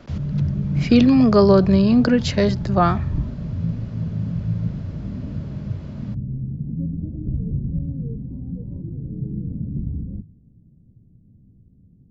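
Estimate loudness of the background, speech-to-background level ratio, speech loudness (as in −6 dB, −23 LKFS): −27.0 LKFS, 10.5 dB, −16.5 LKFS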